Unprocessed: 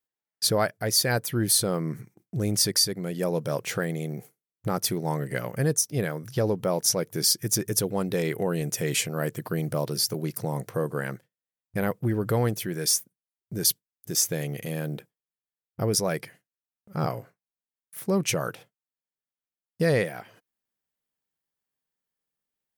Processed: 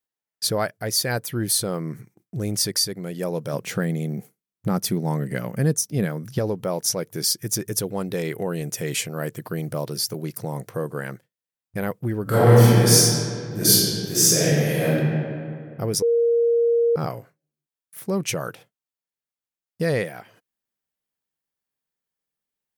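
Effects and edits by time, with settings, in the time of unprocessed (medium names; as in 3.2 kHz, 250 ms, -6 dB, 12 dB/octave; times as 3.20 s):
3.53–6.39 s: peaking EQ 200 Hz +9 dB 0.94 oct
12.23–14.95 s: reverb throw, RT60 2.3 s, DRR -11.5 dB
16.02–16.96 s: bleep 468 Hz -15.5 dBFS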